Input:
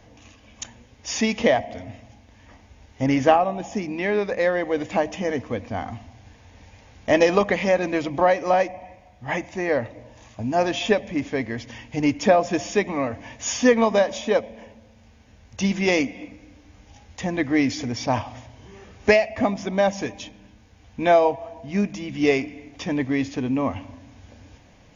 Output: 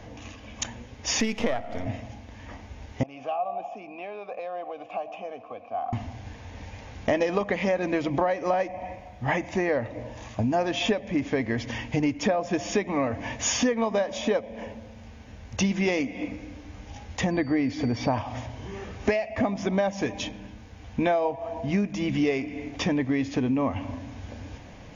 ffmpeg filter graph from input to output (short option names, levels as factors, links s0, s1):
-filter_complex "[0:a]asettb=1/sr,asplit=3[s0][s1][s2];[s0]atrim=end=1.204[s3];[s1]atrim=start=1.2:end=1.86,asetpts=PTS-STARTPTS,afade=t=in:d=0.004:c=qsin,afade=t=out:st=0.656:d=0.004:c=qsin,aeval=exprs='if(lt(val(0),0),0.447*val(0),val(0))':c=same,asubboost=boost=10.5:cutoff=55[s4];[s2]atrim=start=1.856[s5];[s3][s4]acrossfade=d=0.004:c1=hsin:c2=qsin[s6];[s6][s5]acrossfade=d=0.004:c1=qsin:c2=hsin,asettb=1/sr,asplit=3[s7][s8][s9];[s7]atrim=end=3.034[s10];[s8]atrim=start=3.03:end=5.93,asetpts=PTS-STARTPTS,afade=t=in:d=0.004:c=qsin,afade=t=out:st=2.896:d=0.004:c=qsin,acrossover=split=150|3000[s11][s12][s13];[s12]acompressor=threshold=0.0447:ratio=6:attack=3.2:release=140:knee=2.83:detection=peak[s14];[s11][s14][s13]amix=inputs=3:normalize=0,asplit=3[s15][s16][s17];[s15]bandpass=f=730:t=q:w=8,volume=1[s18];[s16]bandpass=f=1090:t=q:w=8,volume=0.501[s19];[s17]bandpass=f=2440:t=q:w=8,volume=0.355[s20];[s18][s19][s20]amix=inputs=3:normalize=0[s21];[s9]atrim=start=5.926[s22];[s10][s21]acrossfade=d=0.004:c1=hsin:c2=qsin[s23];[s23][s22]acrossfade=d=0.004:c1=qsin:c2=hsin,asettb=1/sr,asplit=3[s24][s25][s26];[s24]atrim=end=17.314[s27];[s25]atrim=start=17.31:end=18.18,asetpts=PTS-STARTPTS,afade=t=in:d=0.004:c=qsin,afade=t=out:st=0.866:d=0.004:c=qsin,aemphasis=mode=reproduction:type=75fm,aeval=exprs='val(0)+0.00447*sin(2*PI*4600*n/s)':c=same[s28];[s26]atrim=start=18.176[s29];[s27][s28]acrossfade=d=0.004:c1=hsin:c2=qsin[s30];[s30][s29]acrossfade=d=0.004:c1=qsin:c2=hsin,highshelf=f=3900:g=-6,acompressor=threshold=0.0316:ratio=6,volume=2.37"